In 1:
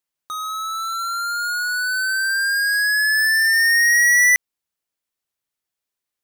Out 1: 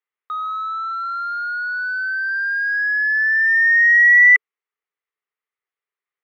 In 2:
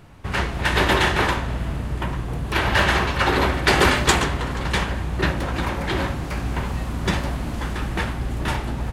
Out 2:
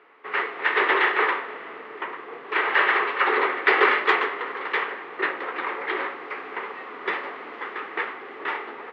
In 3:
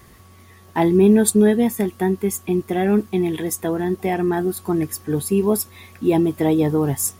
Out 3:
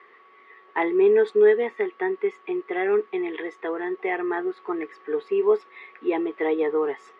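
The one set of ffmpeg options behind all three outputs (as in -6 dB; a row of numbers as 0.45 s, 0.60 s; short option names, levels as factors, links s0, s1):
-af "highpass=f=380:w=0.5412,highpass=f=380:w=1.3066,equalizer=f=430:t=q:w=4:g=9,equalizer=f=610:t=q:w=4:g=-6,equalizer=f=1200:t=q:w=4:g=8,equalizer=f=2000:t=q:w=4:g=9,lowpass=f=3100:w=0.5412,lowpass=f=3100:w=1.3066,volume=0.596"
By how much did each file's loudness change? +1.5 LU, -2.0 LU, -5.0 LU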